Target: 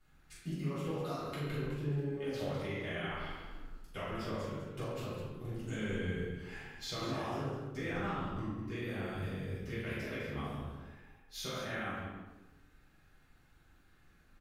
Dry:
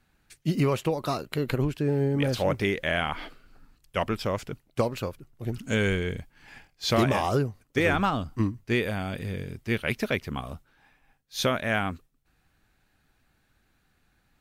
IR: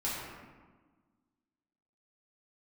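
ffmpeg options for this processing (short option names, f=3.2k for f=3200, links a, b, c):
-filter_complex "[0:a]acompressor=threshold=-39dB:ratio=4,aecho=1:1:41|135|204:0.562|0.211|0.355[a];[1:a]atrim=start_sample=2205,asetrate=61740,aresample=44100[b];[a][b]afir=irnorm=-1:irlink=0,volume=-3.5dB"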